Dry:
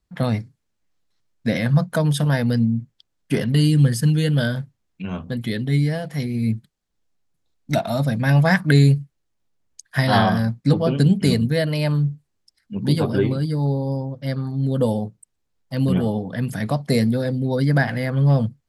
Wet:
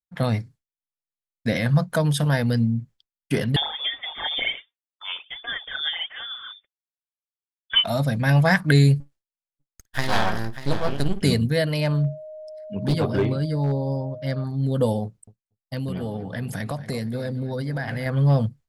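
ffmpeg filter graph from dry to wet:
ffmpeg -i in.wav -filter_complex "[0:a]asettb=1/sr,asplit=3[link_01][link_02][link_03];[link_01]atrim=end=3.564[link_04];[link_02]atrim=start=3.56:end=7.84,asetpts=PTS-STARTPTS,afade=type=in:duration=0.004:curve=qsin,afade=type=out:start_time=4.276:duration=0.004:curve=qsin,highpass=570,aphaser=in_gain=1:out_gain=1:delay=4.4:decay=0.69:speed=1.3:type=sinusoidal,lowpass=frequency=3100:width_type=q:width=0.5098,lowpass=frequency=3100:width_type=q:width=0.6013,lowpass=frequency=3100:width_type=q:width=0.9,lowpass=frequency=3100:width_type=q:width=2.563,afreqshift=-3700[link_05];[link_03]atrim=start=7.836[link_06];[link_04][link_05]acrossfade=duration=0.004:curve1=hsin:curve2=qsin[link_07];[link_07][link_06]acrossfade=duration=0.004:curve1=qsin:curve2=hsin,asettb=1/sr,asplit=3[link_08][link_09][link_10];[link_08]atrim=end=9.004[link_11];[link_09]atrim=start=9:end=11.23,asetpts=PTS-STARTPTS,afade=type=in:duration=0.004:curve=qsin,afade=type=out:start_time=2.226:duration=0.004:curve=qsin,lowshelf=frequency=210:gain=-6.5,aeval=exprs='max(val(0),0)':channel_layout=same,aecho=1:1:56|590:0.112|0.237,atrim=end_sample=98343[link_12];[link_10]atrim=start=11.226[link_13];[link_11][link_12]acrossfade=duration=0.004:curve1=hsin:curve2=qsin[link_14];[link_14][link_13]acrossfade=duration=0.004:curve1=qsin:curve2=hsin,asettb=1/sr,asplit=3[link_15][link_16][link_17];[link_15]atrim=end=11.804[link_18];[link_16]atrim=start=11.8:end=14.44,asetpts=PTS-STARTPTS,afade=type=in:duration=0.004:curve=qsin,afade=type=out:start_time=2.636:duration=0.004:curve=qsin,highshelf=frequency=8300:gain=-9.5,aeval=exprs='val(0)+0.0178*sin(2*PI*620*n/s)':channel_layout=same,volume=13.5dB,asoftclip=hard,volume=-13.5dB[link_19];[link_17]atrim=start=14.436[link_20];[link_18][link_19]acrossfade=duration=0.004:curve1=hsin:curve2=qsin[link_21];[link_21][link_20]acrossfade=duration=0.004:curve1=qsin:curve2=hsin,asettb=1/sr,asplit=3[link_22][link_23][link_24];[link_22]atrim=end=15.044[link_25];[link_23]atrim=start=15.04:end=18.06,asetpts=PTS-STARTPTS,afade=type=in:duration=0.004:curve=qsin,afade=type=out:start_time=3.016:duration=0.004:curve=qsin,acompressor=threshold=-23dB:ratio=5:attack=3.2:release=140:knee=1:detection=peak,asplit=2[link_26][link_27];[link_27]adelay=233,lowpass=frequency=3200:poles=1,volume=-13.5dB,asplit=2[link_28][link_29];[link_29]adelay=233,lowpass=frequency=3200:poles=1,volume=0.41,asplit=2[link_30][link_31];[link_31]adelay=233,lowpass=frequency=3200:poles=1,volume=0.41,asplit=2[link_32][link_33];[link_33]adelay=233,lowpass=frequency=3200:poles=1,volume=0.41[link_34];[link_26][link_28][link_30][link_32][link_34]amix=inputs=5:normalize=0,atrim=end_sample=133182[link_35];[link_24]atrim=start=18.056[link_36];[link_25][link_35]acrossfade=duration=0.004:curve1=hsin:curve2=qsin[link_37];[link_37][link_36]acrossfade=duration=0.004:curve1=qsin:curve2=hsin,equalizer=frequency=200:width_type=o:width=2.2:gain=-6.5,agate=range=-33dB:threshold=-43dB:ratio=3:detection=peak,lowshelf=frequency=390:gain=4" out.wav

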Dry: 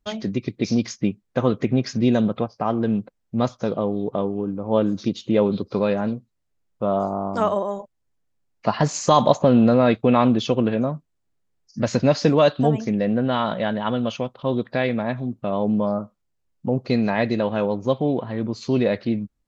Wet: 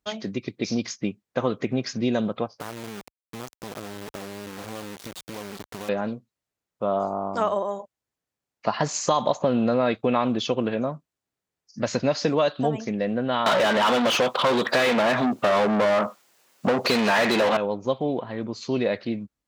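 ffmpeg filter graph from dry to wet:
ffmpeg -i in.wav -filter_complex "[0:a]asettb=1/sr,asplit=3[link_01][link_02][link_03];[link_01]atrim=end=2.604[link_04];[link_02]atrim=start=2.6:end=5.89,asetpts=PTS-STARTPTS,afade=type=in:duration=0.004:curve=qsin,afade=type=out:start_time=3.286:duration=0.004:curve=qsin,lowshelf=frequency=140:gain=8,acompressor=threshold=-24dB:ratio=16:attack=3.2:release=140:knee=1:detection=peak,acrusher=bits=3:dc=4:mix=0:aa=0.000001[link_05];[link_03]atrim=start=5.886[link_06];[link_04][link_05]acrossfade=duration=0.004:curve1=hsin:curve2=qsin[link_07];[link_07][link_06]acrossfade=duration=0.004:curve1=qsin:curve2=hsin,asettb=1/sr,asplit=3[link_08][link_09][link_10];[link_08]atrim=end=13.464[link_11];[link_09]atrim=start=13.46:end=17.57,asetpts=PTS-STARTPTS,afade=type=in:duration=0.004:curve=qsin,afade=type=out:start_time=4.106:duration=0.004:curve=qsin,aemphasis=mode=production:type=75kf,asplit=2[link_12][link_13];[link_13]highpass=frequency=720:poles=1,volume=36dB,asoftclip=type=tanh:threshold=-6.5dB[link_14];[link_12][link_14]amix=inputs=2:normalize=0,lowpass=frequency=1600:poles=1,volume=-6dB,highpass=140[link_15];[link_10]atrim=start=17.566[link_16];[link_11][link_15]acrossfade=duration=0.004:curve1=hsin:curve2=qsin[link_17];[link_17][link_16]acrossfade=duration=0.004:curve1=qsin:curve2=hsin,highpass=49,lowshelf=frequency=280:gain=-9.5,acompressor=threshold=-17dB:ratio=6" out.wav

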